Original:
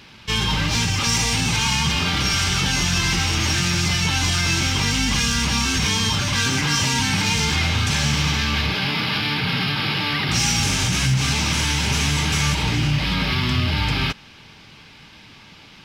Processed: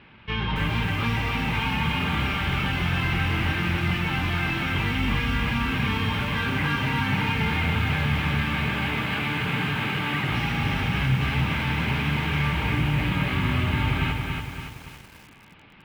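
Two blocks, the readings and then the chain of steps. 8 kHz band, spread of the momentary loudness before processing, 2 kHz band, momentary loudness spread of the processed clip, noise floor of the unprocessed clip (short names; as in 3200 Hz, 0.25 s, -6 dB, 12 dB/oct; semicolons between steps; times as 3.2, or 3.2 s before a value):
-25.0 dB, 2 LU, -3.0 dB, 2 LU, -46 dBFS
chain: LPF 2700 Hz 24 dB/oct; lo-fi delay 0.282 s, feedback 55%, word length 7-bit, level -3.5 dB; gain -4 dB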